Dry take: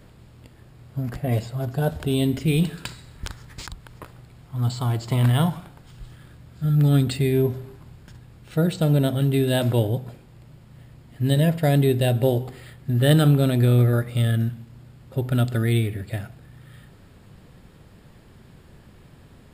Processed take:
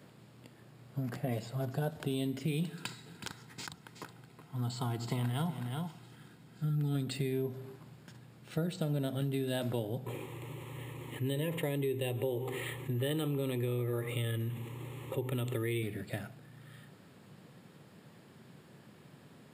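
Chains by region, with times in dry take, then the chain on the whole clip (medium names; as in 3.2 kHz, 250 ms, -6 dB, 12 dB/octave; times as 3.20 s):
2.69–6.95 s: comb of notches 580 Hz + delay 371 ms -11 dB
10.06–15.83 s: static phaser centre 1 kHz, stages 8 + level flattener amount 50%
whole clip: high-pass 130 Hz 24 dB/octave; compression 4:1, threshold -27 dBFS; trim -4.5 dB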